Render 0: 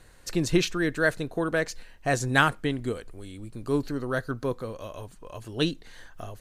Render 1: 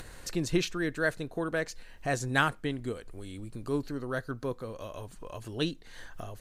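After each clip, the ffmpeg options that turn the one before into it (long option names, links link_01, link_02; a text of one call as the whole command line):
ffmpeg -i in.wav -af "acompressor=mode=upward:threshold=-29dB:ratio=2.5,volume=-5dB" out.wav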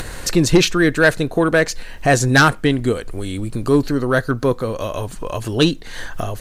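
ffmpeg -i in.wav -af "aeval=exprs='0.355*sin(PI/2*2.82*val(0)/0.355)':channel_layout=same,volume=4dB" out.wav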